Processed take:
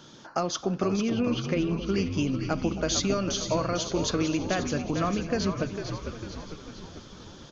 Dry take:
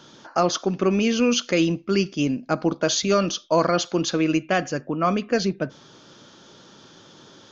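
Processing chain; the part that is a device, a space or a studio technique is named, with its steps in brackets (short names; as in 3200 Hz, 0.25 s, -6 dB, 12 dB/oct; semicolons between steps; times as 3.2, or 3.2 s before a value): 0.96–1.95 air absorption 300 m; ASMR close-microphone chain (low shelf 180 Hz +7.5 dB; compressor, threshold -20 dBFS, peak gain reduction 8 dB; high shelf 6200 Hz +5 dB); frequency-shifting echo 0.45 s, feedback 53%, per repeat -71 Hz, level -7.5 dB; echo with dull and thin repeats by turns 0.268 s, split 970 Hz, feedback 73%, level -12 dB; gain -3.5 dB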